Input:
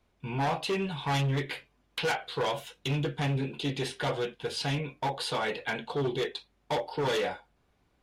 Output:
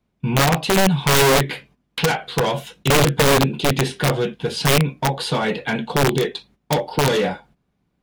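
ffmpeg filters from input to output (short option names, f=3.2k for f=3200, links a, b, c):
-af "agate=range=-12dB:threshold=-58dB:ratio=16:detection=peak,equalizer=f=180:w=1.1:g=12.5,aeval=exprs='(mod(7.5*val(0)+1,2)-1)/7.5':c=same,volume=7.5dB"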